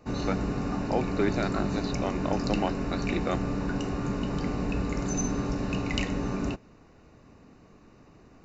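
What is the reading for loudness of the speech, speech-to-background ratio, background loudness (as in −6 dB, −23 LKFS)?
−33.0 LKFS, −2.0 dB, −31.0 LKFS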